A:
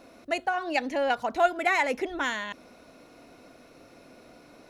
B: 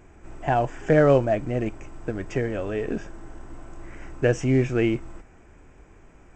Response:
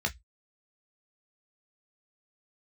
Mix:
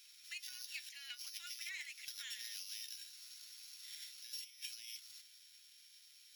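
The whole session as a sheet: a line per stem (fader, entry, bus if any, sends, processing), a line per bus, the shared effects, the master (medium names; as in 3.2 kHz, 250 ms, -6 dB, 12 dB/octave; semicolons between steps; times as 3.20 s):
+1.5 dB, 0.00 s, send -15.5 dB, none
+2.5 dB, 0.00 s, no send, sorted samples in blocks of 8 samples; compressor with a negative ratio -26 dBFS, ratio -0.5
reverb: on, RT60 0.10 s, pre-delay 12 ms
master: inverse Chebyshev high-pass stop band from 600 Hz, stop band 70 dB; flange 0.45 Hz, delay 4.9 ms, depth 2 ms, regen +53%; compression 3:1, threshold -45 dBFS, peak gain reduction 9.5 dB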